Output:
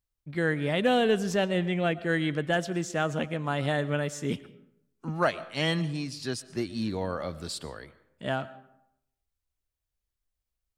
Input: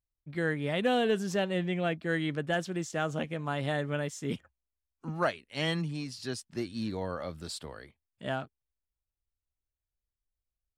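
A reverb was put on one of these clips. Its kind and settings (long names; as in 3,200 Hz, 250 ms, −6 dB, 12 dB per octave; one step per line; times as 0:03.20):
comb and all-pass reverb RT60 0.79 s, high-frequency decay 0.55×, pre-delay 75 ms, DRR 17 dB
level +3.5 dB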